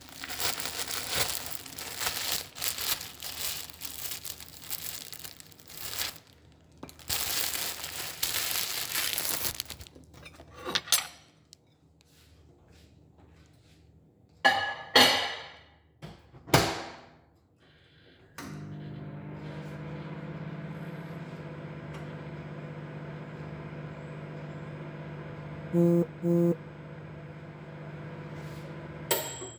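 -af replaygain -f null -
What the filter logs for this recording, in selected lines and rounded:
track_gain = +12.0 dB
track_peak = 0.359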